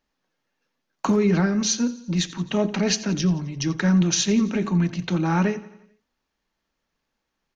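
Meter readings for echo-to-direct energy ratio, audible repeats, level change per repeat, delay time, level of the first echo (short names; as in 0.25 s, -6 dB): -16.5 dB, 4, -5.5 dB, 87 ms, -18.0 dB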